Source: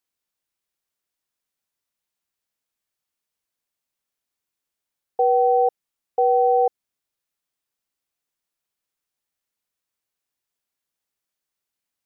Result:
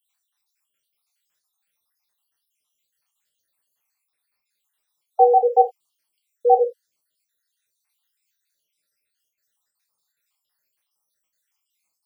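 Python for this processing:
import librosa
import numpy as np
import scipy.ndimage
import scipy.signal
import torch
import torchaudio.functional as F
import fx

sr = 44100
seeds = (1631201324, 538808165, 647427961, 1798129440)

y = fx.spec_dropout(x, sr, seeds[0], share_pct=74)
y = fx.tilt_shelf(y, sr, db=-6.0, hz=760.0)
y = fx.rev_gated(y, sr, seeds[1], gate_ms=100, shape='falling', drr_db=2.5)
y = y * 10.0 ** (6.0 / 20.0)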